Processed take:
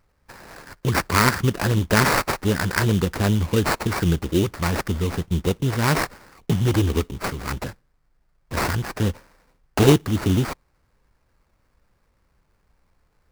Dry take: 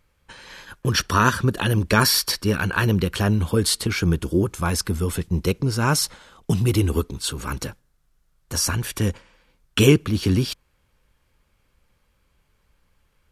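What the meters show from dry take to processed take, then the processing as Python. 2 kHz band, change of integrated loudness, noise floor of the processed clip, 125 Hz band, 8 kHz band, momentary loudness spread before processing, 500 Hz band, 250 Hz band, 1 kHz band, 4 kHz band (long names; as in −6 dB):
+1.0 dB, −0.5 dB, −67 dBFS, 0.0 dB, −5.0 dB, 11 LU, +0.5 dB, 0.0 dB, +1.5 dB, −4.5 dB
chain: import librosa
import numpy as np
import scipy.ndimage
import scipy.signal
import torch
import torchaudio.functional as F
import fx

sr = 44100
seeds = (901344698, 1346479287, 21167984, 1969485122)

y = fx.mod_noise(x, sr, seeds[0], snr_db=31)
y = fx.sample_hold(y, sr, seeds[1], rate_hz=3300.0, jitter_pct=20)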